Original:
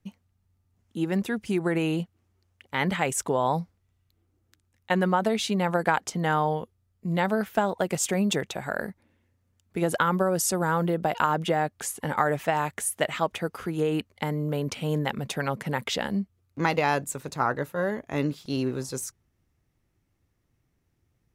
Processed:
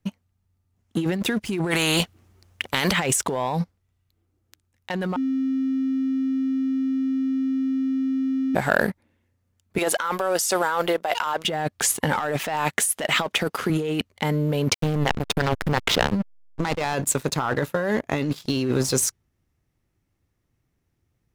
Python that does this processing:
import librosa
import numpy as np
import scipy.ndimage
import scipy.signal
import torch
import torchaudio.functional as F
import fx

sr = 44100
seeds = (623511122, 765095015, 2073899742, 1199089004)

y = fx.spectral_comp(x, sr, ratio=2.0, at=(1.7, 2.91), fade=0.02)
y = fx.highpass(y, sr, hz=540.0, slope=12, at=(9.78, 11.45))
y = fx.highpass(y, sr, hz=150.0, slope=12, at=(12.19, 13.7))
y = fx.backlash(y, sr, play_db=-23.0, at=(14.74, 16.94))
y = fx.edit(y, sr, fx.bleep(start_s=5.16, length_s=3.39, hz=265.0, db=-23.5), tone=tone)
y = fx.dynamic_eq(y, sr, hz=3600.0, q=0.86, threshold_db=-45.0, ratio=4.0, max_db=5)
y = fx.leveller(y, sr, passes=2)
y = fx.over_compress(y, sr, threshold_db=-23.0, ratio=-1.0)